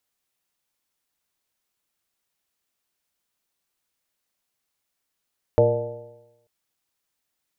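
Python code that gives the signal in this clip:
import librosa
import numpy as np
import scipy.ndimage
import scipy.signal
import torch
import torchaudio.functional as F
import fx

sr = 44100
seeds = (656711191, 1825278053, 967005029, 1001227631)

y = fx.additive_stiff(sr, length_s=0.89, hz=114.0, level_db=-19, upper_db=(-11.5, -7, 4.5, 4.0, -14.0, -10), decay_s=0.96, stiffness=0.0039)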